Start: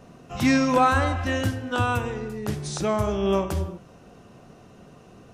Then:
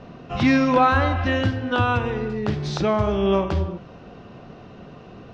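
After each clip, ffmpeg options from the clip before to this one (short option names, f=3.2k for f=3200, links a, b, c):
-filter_complex "[0:a]lowpass=f=4.5k:w=0.5412,lowpass=f=4.5k:w=1.3066,asplit=2[a][b];[b]acompressor=threshold=-29dB:ratio=6,volume=1.5dB[c];[a][c]amix=inputs=2:normalize=0"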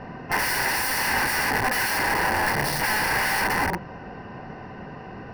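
-af "acontrast=27,aeval=exprs='(mod(8.91*val(0)+1,2)-1)/8.91':c=same,superequalizer=9b=2.51:11b=2.82:13b=0.316:15b=0.316,volume=-2.5dB"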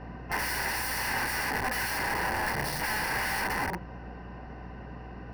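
-af "aeval=exprs='val(0)+0.0158*(sin(2*PI*60*n/s)+sin(2*PI*2*60*n/s)/2+sin(2*PI*3*60*n/s)/3+sin(2*PI*4*60*n/s)/4+sin(2*PI*5*60*n/s)/5)':c=same,volume=-7dB"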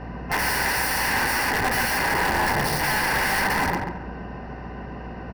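-filter_complex "[0:a]aeval=exprs='0.0596*(abs(mod(val(0)/0.0596+3,4)-2)-1)':c=same,asplit=2[a][b];[b]adelay=138,lowpass=f=1.9k:p=1,volume=-3.5dB,asplit=2[c][d];[d]adelay=138,lowpass=f=1.9k:p=1,volume=0.36,asplit=2[e][f];[f]adelay=138,lowpass=f=1.9k:p=1,volume=0.36,asplit=2[g][h];[h]adelay=138,lowpass=f=1.9k:p=1,volume=0.36,asplit=2[i][j];[j]adelay=138,lowpass=f=1.9k:p=1,volume=0.36[k];[a][c][e][g][i][k]amix=inputs=6:normalize=0,volume=7dB"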